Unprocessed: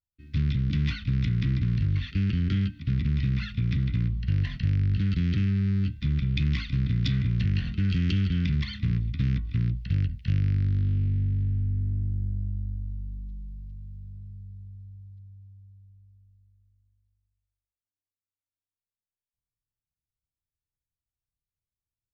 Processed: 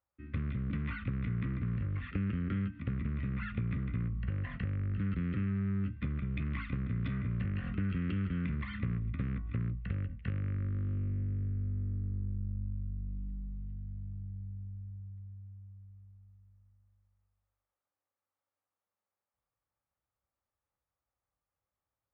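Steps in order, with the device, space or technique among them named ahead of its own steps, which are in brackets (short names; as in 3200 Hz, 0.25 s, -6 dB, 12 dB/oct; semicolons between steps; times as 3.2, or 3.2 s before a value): bass amplifier (compressor 4:1, threshold -33 dBFS, peak gain reduction 11.5 dB; speaker cabinet 63–2200 Hz, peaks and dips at 86 Hz -6 dB, 140 Hz -8 dB, 550 Hz +10 dB, 820 Hz +8 dB, 1200 Hz +9 dB); gain +4.5 dB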